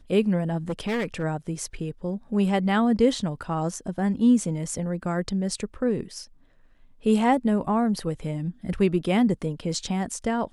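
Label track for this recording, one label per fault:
0.690000	1.240000	clipped -23 dBFS

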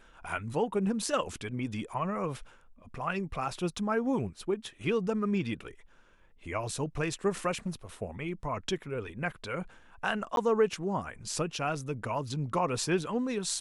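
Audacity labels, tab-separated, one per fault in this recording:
10.360000	10.370000	dropout

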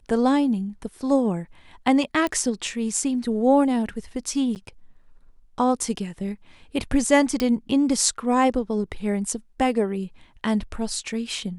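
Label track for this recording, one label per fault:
2.270000	2.270000	pop -13 dBFS
4.550000	4.560000	dropout 9.3 ms
7.400000	7.400000	pop -10 dBFS

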